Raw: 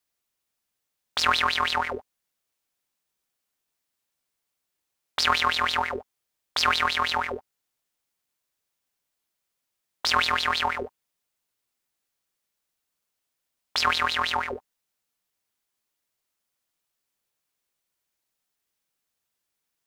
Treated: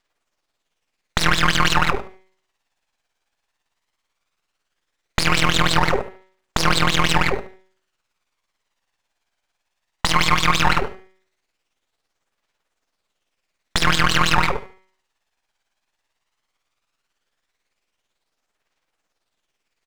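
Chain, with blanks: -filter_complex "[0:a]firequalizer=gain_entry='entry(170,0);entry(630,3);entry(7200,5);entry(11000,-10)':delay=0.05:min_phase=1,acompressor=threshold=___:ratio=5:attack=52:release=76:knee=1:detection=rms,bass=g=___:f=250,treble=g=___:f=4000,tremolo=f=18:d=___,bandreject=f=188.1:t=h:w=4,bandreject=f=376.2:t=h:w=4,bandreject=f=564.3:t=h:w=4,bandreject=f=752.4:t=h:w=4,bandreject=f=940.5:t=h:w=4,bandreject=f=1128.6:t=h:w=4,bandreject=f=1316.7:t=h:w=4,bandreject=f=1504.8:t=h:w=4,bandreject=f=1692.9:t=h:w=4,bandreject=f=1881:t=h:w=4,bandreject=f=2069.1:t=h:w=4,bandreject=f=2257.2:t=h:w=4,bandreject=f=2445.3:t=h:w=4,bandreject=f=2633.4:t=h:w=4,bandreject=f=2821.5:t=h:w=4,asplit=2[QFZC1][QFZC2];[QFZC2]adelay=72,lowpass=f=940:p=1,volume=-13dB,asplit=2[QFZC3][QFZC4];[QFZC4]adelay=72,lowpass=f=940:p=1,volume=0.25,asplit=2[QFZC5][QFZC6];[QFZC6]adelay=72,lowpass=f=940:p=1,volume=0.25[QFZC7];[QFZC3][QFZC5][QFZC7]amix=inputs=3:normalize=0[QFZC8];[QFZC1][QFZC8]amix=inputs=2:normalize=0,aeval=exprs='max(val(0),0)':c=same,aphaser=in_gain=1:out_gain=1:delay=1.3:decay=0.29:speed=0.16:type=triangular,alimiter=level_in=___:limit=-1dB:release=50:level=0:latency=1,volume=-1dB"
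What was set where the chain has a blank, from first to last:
-21dB, -9, -12, 0.57, 16.5dB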